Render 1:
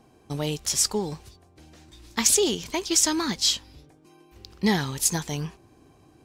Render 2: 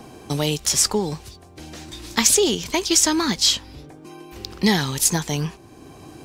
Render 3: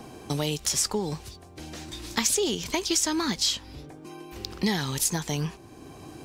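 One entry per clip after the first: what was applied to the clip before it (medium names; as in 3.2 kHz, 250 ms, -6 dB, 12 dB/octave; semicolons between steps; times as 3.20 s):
three bands compressed up and down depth 40%; trim +5.5 dB
compression 2:1, threshold -24 dBFS, peak gain reduction 7 dB; trim -2 dB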